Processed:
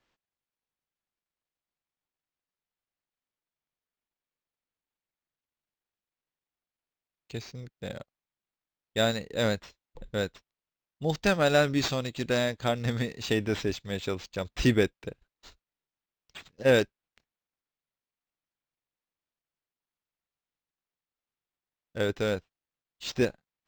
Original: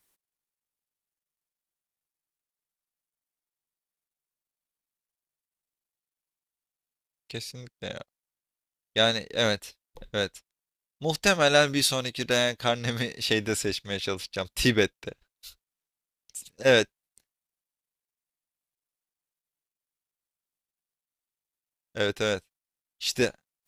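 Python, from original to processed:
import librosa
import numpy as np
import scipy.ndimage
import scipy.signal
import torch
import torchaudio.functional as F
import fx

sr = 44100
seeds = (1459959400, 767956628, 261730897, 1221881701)

y = fx.low_shelf(x, sr, hz=480.0, db=7.0)
y = np.interp(np.arange(len(y)), np.arange(len(y))[::4], y[::4])
y = y * librosa.db_to_amplitude(-4.5)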